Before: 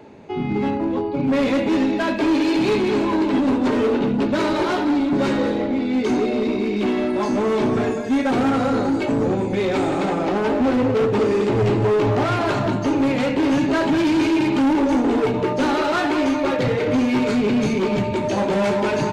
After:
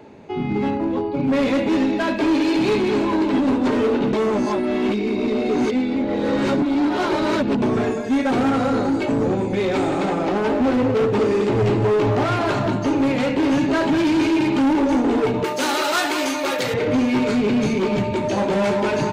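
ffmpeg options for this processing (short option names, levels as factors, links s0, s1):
-filter_complex "[0:a]asettb=1/sr,asplit=3[s0][s1][s2];[s0]atrim=end=15.444[s3];[s1]atrim=start=15.44:end=16.74,asetpts=PTS-STARTPTS,afade=t=in:d=0.004:c=qsin,afade=t=out:st=1.296:d=0.004:c=qsin,aemphasis=mode=production:type=riaa[s4];[s2]atrim=start=16.736[s5];[s3][s4]acrossfade=d=0.004:c1=hsin:c2=qsin[s6];[s6][s5]acrossfade=d=0.004:c1=qsin:c2=hsin,asplit=3[s7][s8][s9];[s7]atrim=end=4.132[s10];[s8]atrim=start=4.128:end=7.622,asetpts=PTS-STARTPTS,areverse[s11];[s9]atrim=start=7.618[s12];[s10][s11]acrossfade=d=0.004:c1=hsin:c2=hsin[s13];[s13][s12]acrossfade=d=0.004:c1=hsin:c2=hsin"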